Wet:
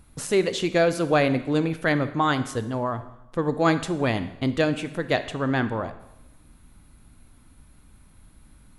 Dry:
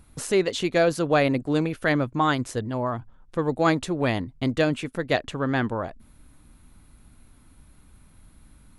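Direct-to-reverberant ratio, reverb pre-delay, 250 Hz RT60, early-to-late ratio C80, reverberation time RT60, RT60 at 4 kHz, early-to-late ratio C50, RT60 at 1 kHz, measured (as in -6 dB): 11.0 dB, 14 ms, 0.95 s, 15.0 dB, 0.95 s, 0.90 s, 12.5 dB, 0.95 s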